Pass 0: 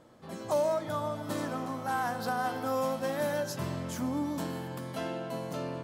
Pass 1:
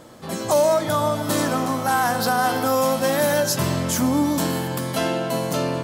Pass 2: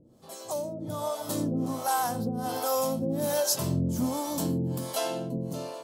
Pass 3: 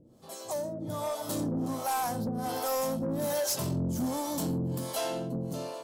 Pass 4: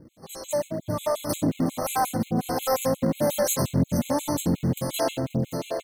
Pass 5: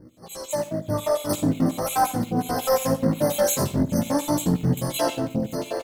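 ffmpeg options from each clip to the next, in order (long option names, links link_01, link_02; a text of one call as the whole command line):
ffmpeg -i in.wav -filter_complex "[0:a]highshelf=frequency=3900:gain=8.5,asplit=2[link_01][link_02];[link_02]alimiter=level_in=0.5dB:limit=-24dB:level=0:latency=1:release=27,volume=-0.5dB,volume=2.5dB[link_03];[link_01][link_03]amix=inputs=2:normalize=0,volume=5dB" out.wav
ffmpeg -i in.wav -filter_complex "[0:a]dynaudnorm=framelen=290:gausssize=7:maxgain=10dB,equalizer=frequency=1800:width=0.91:gain=-12.5,acrossover=split=450[link_01][link_02];[link_01]aeval=exprs='val(0)*(1-1/2+1/2*cos(2*PI*1.3*n/s))':channel_layout=same[link_03];[link_02]aeval=exprs='val(0)*(1-1/2-1/2*cos(2*PI*1.3*n/s))':channel_layout=same[link_04];[link_03][link_04]amix=inputs=2:normalize=0,volume=-7.5dB" out.wav
ffmpeg -i in.wav -af "asoftclip=type=tanh:threshold=-25dB" out.wav
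ffmpeg -i in.wav -filter_complex "[0:a]asplit=2[link_01][link_02];[link_02]adelay=699.7,volume=-9dB,highshelf=frequency=4000:gain=-15.7[link_03];[link_01][link_03]amix=inputs=2:normalize=0,asplit=2[link_04][link_05];[link_05]acrusher=samples=31:mix=1:aa=0.000001:lfo=1:lforange=49.6:lforate=3.3,volume=-11.5dB[link_06];[link_04][link_06]amix=inputs=2:normalize=0,afftfilt=real='re*gt(sin(2*PI*5.6*pts/sr)*(1-2*mod(floor(b*sr/1024/2100),2)),0)':imag='im*gt(sin(2*PI*5.6*pts/sr)*(1-2*mod(floor(b*sr/1024/2100),2)),0)':win_size=1024:overlap=0.75,volume=7.5dB" out.wav
ffmpeg -i in.wav -af "flanger=delay=16:depth=4.4:speed=0.43,aecho=1:1:74:0.158,volume=5dB" out.wav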